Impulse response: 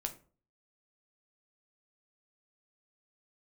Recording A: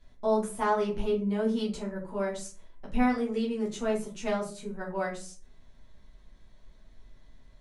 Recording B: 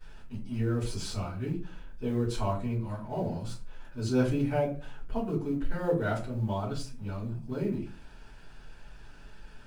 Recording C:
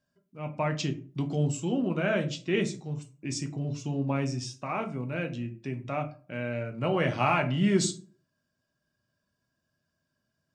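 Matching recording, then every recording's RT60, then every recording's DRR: C; 0.40 s, 0.40 s, 0.40 s; -5.0 dB, -14.5 dB, 4.5 dB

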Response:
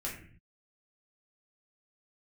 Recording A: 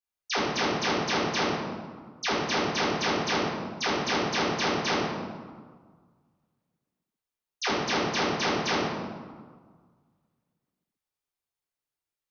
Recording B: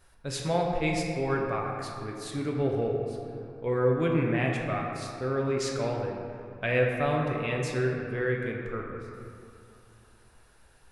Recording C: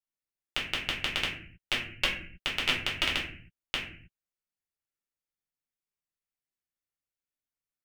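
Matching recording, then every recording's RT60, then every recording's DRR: C; 1.6 s, 2.7 s, no single decay rate; -12.5 dB, -1.0 dB, -5.0 dB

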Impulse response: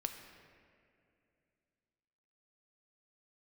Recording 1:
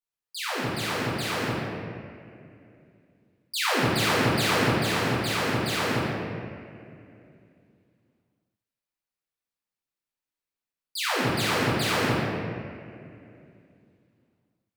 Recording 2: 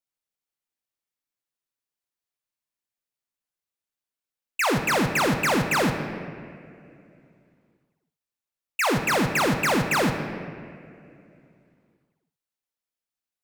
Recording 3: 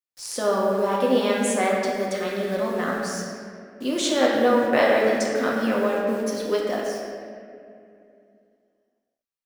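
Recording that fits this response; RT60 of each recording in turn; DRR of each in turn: 2; 2.5 s, 2.5 s, 2.5 s; -9.0 dB, 5.0 dB, -4.0 dB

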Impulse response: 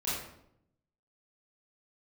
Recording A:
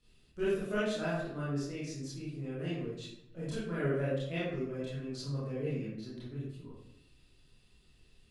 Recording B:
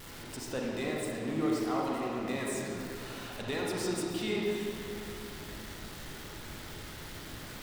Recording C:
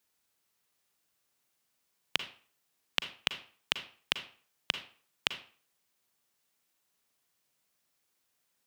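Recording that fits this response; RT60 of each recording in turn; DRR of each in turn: A; 0.75 s, 2.8 s, 0.45 s; -10.5 dB, -3.5 dB, 9.0 dB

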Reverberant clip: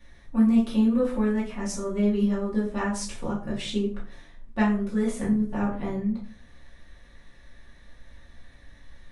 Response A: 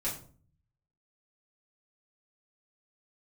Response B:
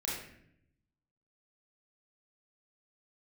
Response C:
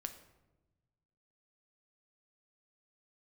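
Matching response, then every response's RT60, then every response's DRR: A; 0.45 s, 0.70 s, 1.1 s; -8.0 dB, -5.5 dB, 6.5 dB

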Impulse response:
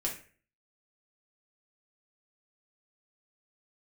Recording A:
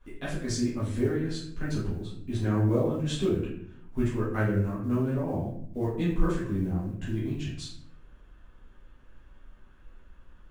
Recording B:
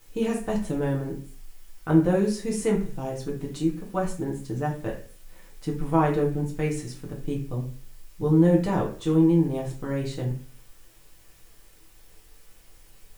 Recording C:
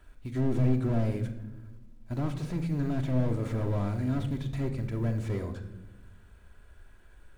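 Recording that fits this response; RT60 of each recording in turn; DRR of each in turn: B; 0.65 s, 0.40 s, no single decay rate; -10.5 dB, -2.5 dB, 4.5 dB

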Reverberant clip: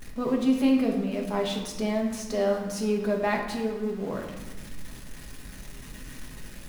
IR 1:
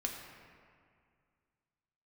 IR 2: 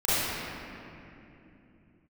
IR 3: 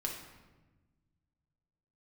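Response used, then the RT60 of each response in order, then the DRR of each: 3; 2.2 s, 2.9 s, 1.2 s; 0.0 dB, -14.0 dB, -0.5 dB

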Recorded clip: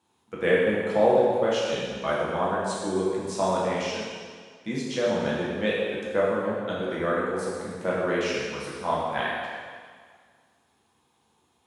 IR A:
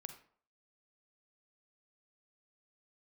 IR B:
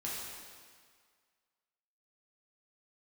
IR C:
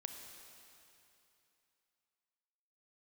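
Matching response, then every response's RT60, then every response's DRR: B; 0.55 s, 1.8 s, 2.9 s; 7.5 dB, -6.5 dB, 4.5 dB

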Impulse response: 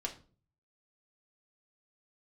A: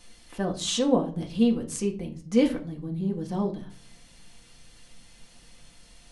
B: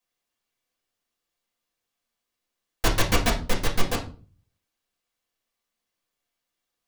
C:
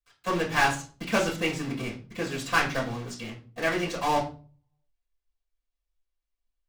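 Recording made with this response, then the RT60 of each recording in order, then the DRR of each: A; 0.40 s, 0.40 s, 0.40 s; 0.0 dB, -5.5 dB, -14.0 dB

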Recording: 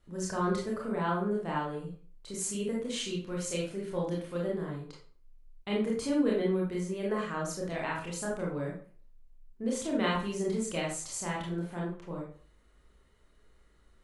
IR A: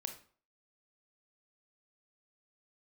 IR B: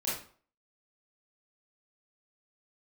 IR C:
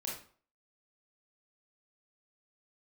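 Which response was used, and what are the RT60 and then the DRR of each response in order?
C; 0.45 s, 0.45 s, 0.45 s; 5.5 dB, -8.5 dB, -4.0 dB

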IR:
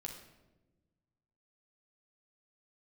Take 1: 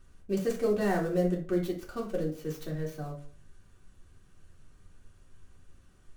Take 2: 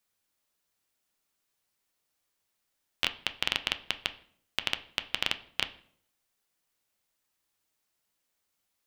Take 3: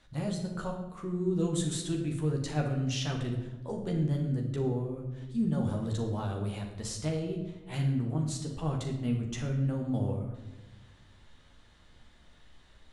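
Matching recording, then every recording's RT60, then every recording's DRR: 3; 0.45 s, 0.60 s, 1.1 s; -4.0 dB, 9.0 dB, 0.5 dB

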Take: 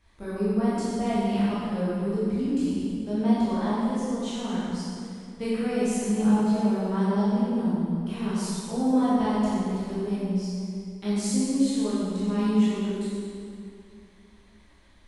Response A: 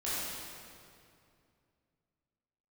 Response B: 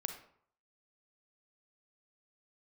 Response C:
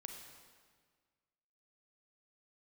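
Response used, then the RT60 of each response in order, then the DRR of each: A; 2.4 s, 0.60 s, 1.7 s; -11.0 dB, 6.0 dB, 3.0 dB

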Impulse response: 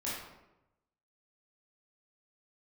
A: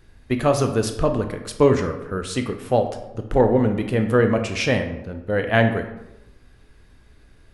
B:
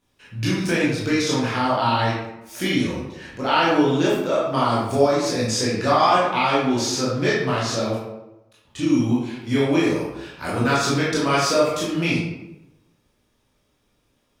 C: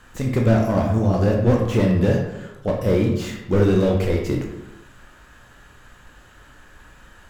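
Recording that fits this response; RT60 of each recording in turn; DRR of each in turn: B; 0.95 s, 0.95 s, 0.95 s; 6.0 dB, -8.0 dB, 0.0 dB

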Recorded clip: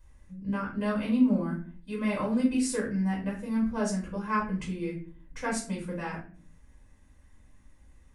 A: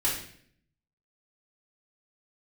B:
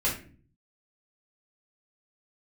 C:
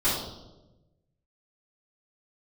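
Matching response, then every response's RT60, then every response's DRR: B; 0.60 s, 0.40 s, 1.1 s; -7.5 dB, -6.0 dB, -14.0 dB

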